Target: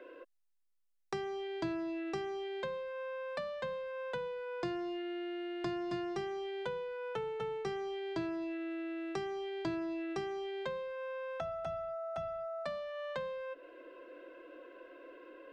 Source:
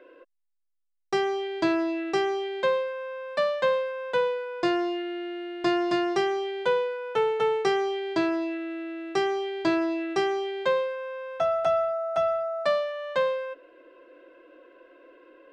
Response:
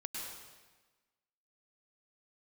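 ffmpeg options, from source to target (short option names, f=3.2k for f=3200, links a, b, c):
-filter_complex "[0:a]acrossover=split=190[a][b];[b]acompressor=threshold=-39dB:ratio=6[c];[a][c]amix=inputs=2:normalize=0"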